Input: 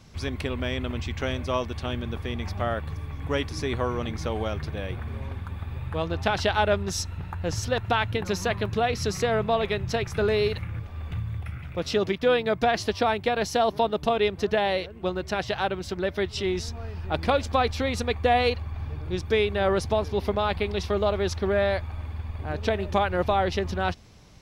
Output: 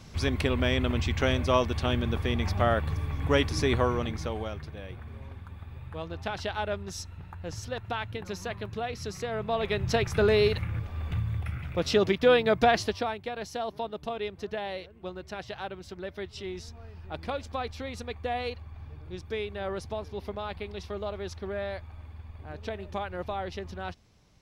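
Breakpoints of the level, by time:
0:03.73 +3 dB
0:04.70 −9 dB
0:09.31 −9 dB
0:09.89 +1 dB
0:12.73 +1 dB
0:13.18 −10.5 dB

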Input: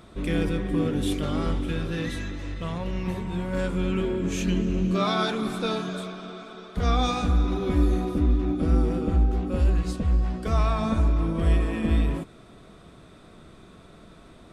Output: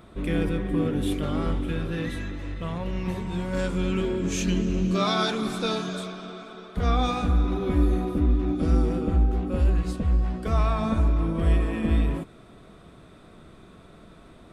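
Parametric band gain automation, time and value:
parametric band 5,800 Hz 1.3 octaves
0:02.68 −6.5 dB
0:03.39 +5 dB
0:05.96 +5 dB
0:06.94 −6 dB
0:08.32 −6 dB
0:08.68 +5 dB
0:09.14 −4 dB

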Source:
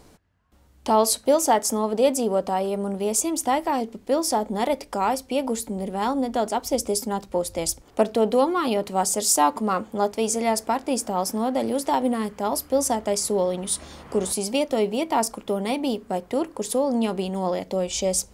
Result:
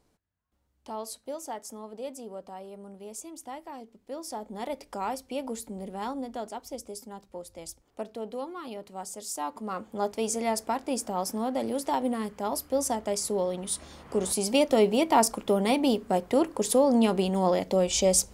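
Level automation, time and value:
0:03.92 −18 dB
0:04.89 −9 dB
0:06.00 −9 dB
0:06.92 −16 dB
0:09.31 −16 dB
0:10.09 −5.5 dB
0:14.03 −5.5 dB
0:14.65 +1 dB

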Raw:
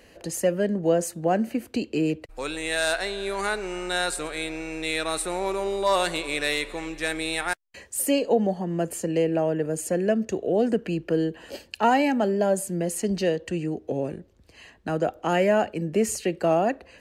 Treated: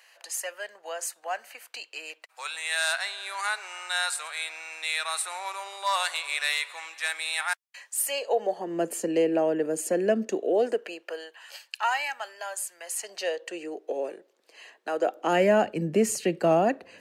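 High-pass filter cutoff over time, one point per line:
high-pass filter 24 dB per octave
0:08.01 860 Hz
0:08.83 230 Hz
0:10.31 230 Hz
0:11.46 980 Hz
0:12.75 980 Hz
0:13.60 410 Hz
0:14.93 410 Hz
0:15.66 120 Hz

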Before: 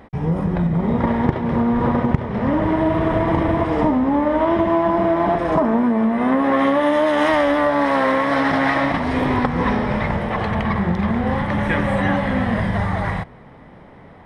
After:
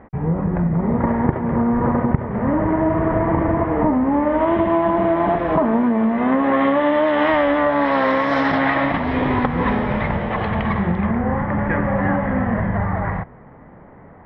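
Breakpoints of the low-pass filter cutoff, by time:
low-pass filter 24 dB per octave
0:03.85 2,000 Hz
0:04.63 3,300 Hz
0:07.69 3,300 Hz
0:08.37 6,600 Hz
0:08.67 3,600 Hz
0:10.81 3,600 Hz
0:11.25 1,900 Hz

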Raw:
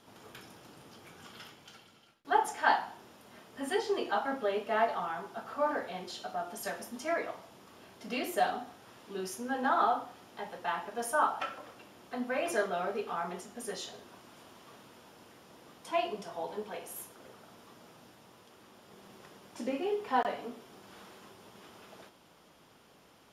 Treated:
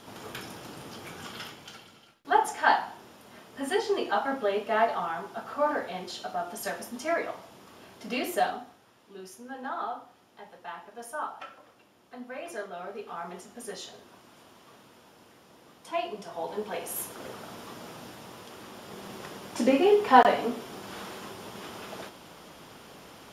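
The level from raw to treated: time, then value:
0:01.14 +10.5 dB
0:02.39 +4 dB
0:08.34 +4 dB
0:08.91 −6.5 dB
0:12.69 −6.5 dB
0:13.46 0 dB
0:16.10 0 dB
0:17.21 +12 dB

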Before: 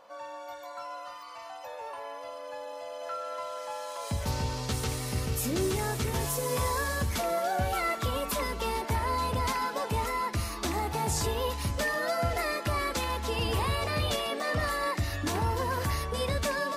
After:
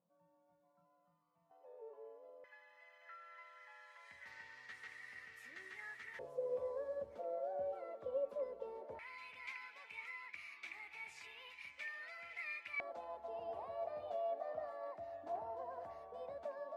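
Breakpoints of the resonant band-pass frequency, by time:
resonant band-pass, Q 12
170 Hz
from 0:01.51 430 Hz
from 0:02.44 1,900 Hz
from 0:06.19 540 Hz
from 0:08.99 2,300 Hz
from 0:12.80 680 Hz

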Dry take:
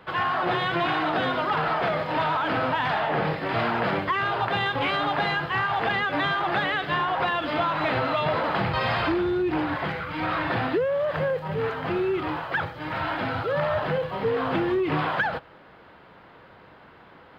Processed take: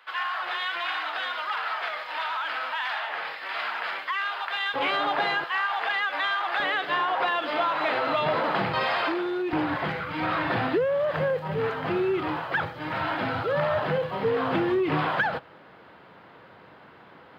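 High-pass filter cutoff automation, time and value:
1,300 Hz
from 0:04.74 330 Hz
from 0:05.44 870 Hz
from 0:06.60 380 Hz
from 0:08.07 170 Hz
from 0:08.84 400 Hz
from 0:09.53 100 Hz

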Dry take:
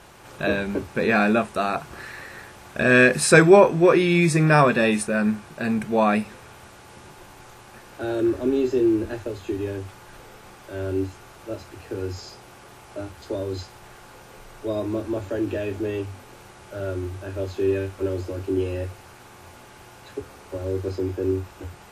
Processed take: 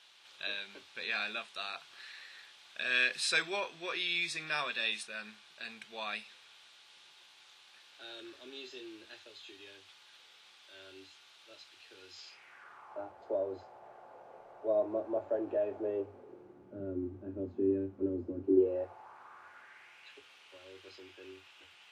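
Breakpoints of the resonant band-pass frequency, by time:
resonant band-pass, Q 2.9
0:12.13 3,600 Hz
0:13.16 660 Hz
0:15.78 660 Hz
0:16.74 250 Hz
0:18.41 250 Hz
0:18.86 750 Hz
0:20.20 3,000 Hz

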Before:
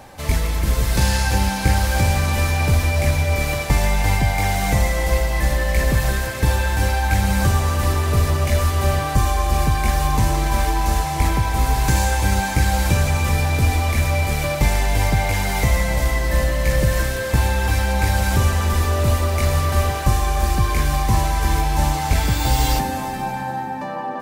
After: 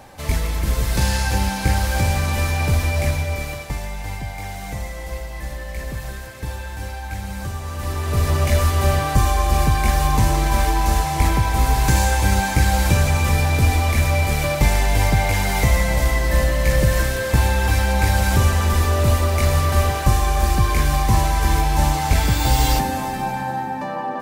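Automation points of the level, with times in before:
0:03.03 −1.5 dB
0:03.86 −11 dB
0:07.59 −11 dB
0:08.37 +1 dB

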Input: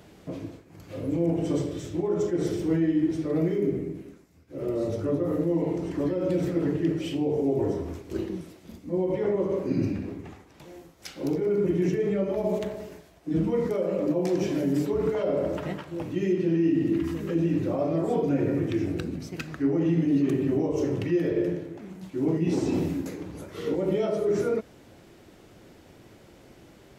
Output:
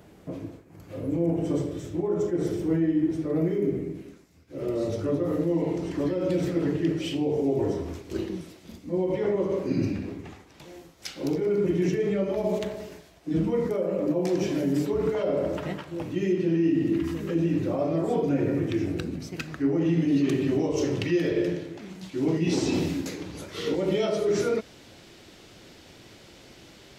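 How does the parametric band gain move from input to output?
parametric band 4,200 Hz 2.1 octaves
0:03.41 −4.5 dB
0:04.06 +5 dB
0:13.30 +5 dB
0:13.89 −4 dB
0:14.32 +2.5 dB
0:19.72 +2.5 dB
0:20.33 +11 dB

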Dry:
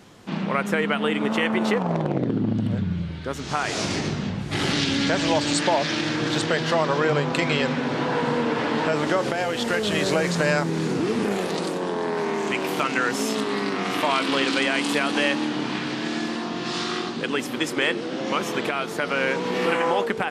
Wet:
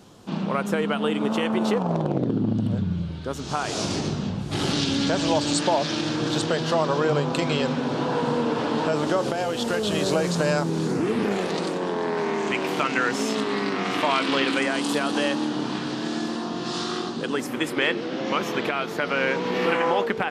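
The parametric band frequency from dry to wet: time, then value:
parametric band −9.5 dB 0.71 octaves
0:10.83 2,000 Hz
0:11.35 12,000 Hz
0:14.33 12,000 Hz
0:14.75 2,200 Hz
0:17.32 2,200 Hz
0:17.83 8,900 Hz

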